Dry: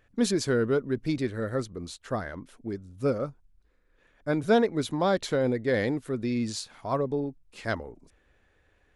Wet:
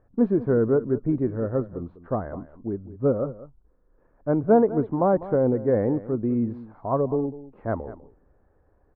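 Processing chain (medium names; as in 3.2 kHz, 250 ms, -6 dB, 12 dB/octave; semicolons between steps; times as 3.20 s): low-pass 1.1 kHz 24 dB/octave; delay 199 ms -16 dB; trim +4.5 dB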